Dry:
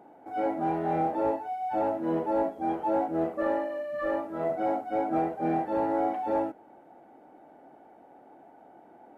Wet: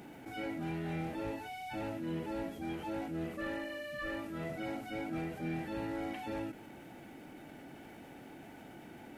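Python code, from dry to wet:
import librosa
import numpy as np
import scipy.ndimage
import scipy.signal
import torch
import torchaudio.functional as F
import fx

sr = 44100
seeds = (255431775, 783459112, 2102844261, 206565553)

y = fx.curve_eq(x, sr, hz=(120.0, 770.0, 2600.0), db=(0, -22, 2))
y = fx.env_flatten(y, sr, amount_pct=50)
y = F.gain(torch.from_numpy(y), 1.0).numpy()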